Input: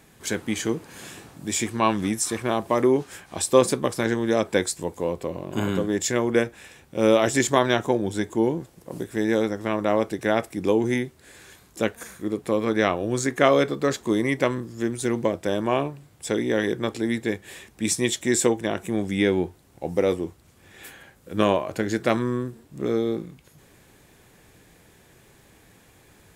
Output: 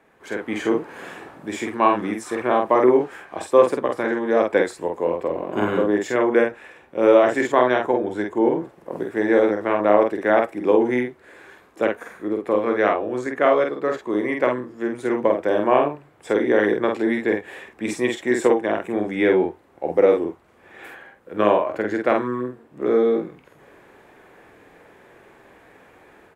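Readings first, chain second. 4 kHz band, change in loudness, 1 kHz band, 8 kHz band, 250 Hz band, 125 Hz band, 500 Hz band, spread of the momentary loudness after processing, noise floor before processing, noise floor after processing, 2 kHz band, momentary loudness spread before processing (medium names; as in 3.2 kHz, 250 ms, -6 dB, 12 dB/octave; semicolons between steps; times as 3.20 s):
-6.5 dB, +3.5 dB, +5.5 dB, under -10 dB, +1.5 dB, -7.0 dB, +5.0 dB, 13 LU, -56 dBFS, -53 dBFS, +3.0 dB, 13 LU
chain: level rider gain up to 8 dB; three-band isolator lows -16 dB, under 290 Hz, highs -20 dB, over 2.3 kHz; doubling 48 ms -3.5 dB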